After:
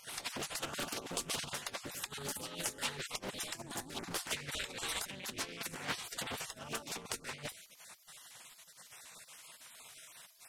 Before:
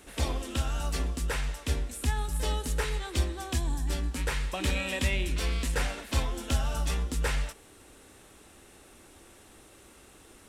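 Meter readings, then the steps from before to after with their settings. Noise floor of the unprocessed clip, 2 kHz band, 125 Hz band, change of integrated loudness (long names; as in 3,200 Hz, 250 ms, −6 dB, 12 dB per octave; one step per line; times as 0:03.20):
−55 dBFS, −6.5 dB, −20.5 dB, −8.5 dB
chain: time-frequency cells dropped at random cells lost 23%
compressor whose output falls as the input rises −33 dBFS, ratio −0.5
gate on every frequency bin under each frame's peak −15 dB weak
highs frequency-modulated by the lows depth 0.64 ms
level +2.5 dB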